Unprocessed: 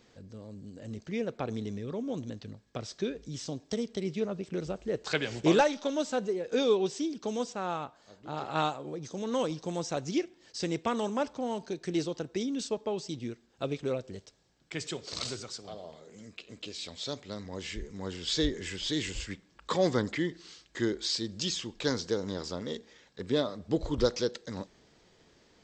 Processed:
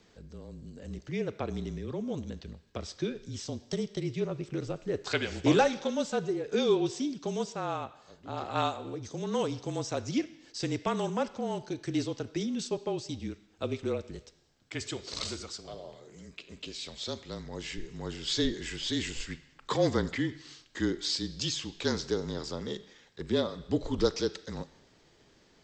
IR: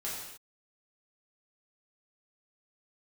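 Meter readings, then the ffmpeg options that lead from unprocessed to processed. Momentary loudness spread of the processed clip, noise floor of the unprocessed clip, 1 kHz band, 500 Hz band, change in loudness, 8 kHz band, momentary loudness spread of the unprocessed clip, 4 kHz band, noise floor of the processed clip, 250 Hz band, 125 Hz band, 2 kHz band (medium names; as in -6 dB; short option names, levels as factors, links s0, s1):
15 LU, -64 dBFS, 0.0 dB, -0.5 dB, 0.0 dB, 0.0 dB, 15 LU, 0.0 dB, -63 dBFS, +0.5 dB, +2.0 dB, 0.0 dB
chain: -filter_complex "[0:a]afreqshift=-32,asplit=2[s0][s1];[s1]tiltshelf=f=1200:g=-5[s2];[1:a]atrim=start_sample=2205,lowpass=4600,adelay=38[s3];[s2][s3]afir=irnorm=-1:irlink=0,volume=0.112[s4];[s0][s4]amix=inputs=2:normalize=0"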